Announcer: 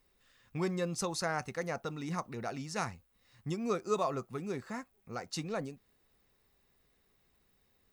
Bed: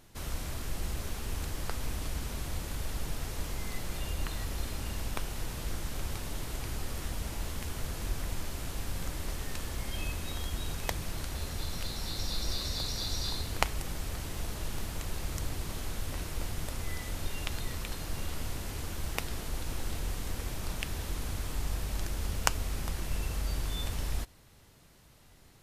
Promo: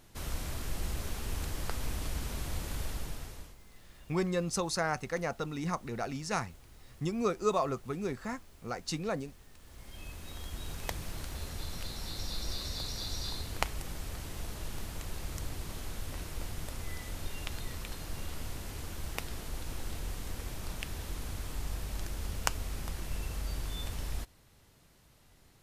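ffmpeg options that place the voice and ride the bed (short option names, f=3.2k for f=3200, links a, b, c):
-filter_complex "[0:a]adelay=3550,volume=2.5dB[a];[1:a]volume=15.5dB,afade=t=out:st=2.81:d=0.75:silence=0.112202,afade=t=in:st=9.59:d=1.31:silence=0.158489[b];[a][b]amix=inputs=2:normalize=0"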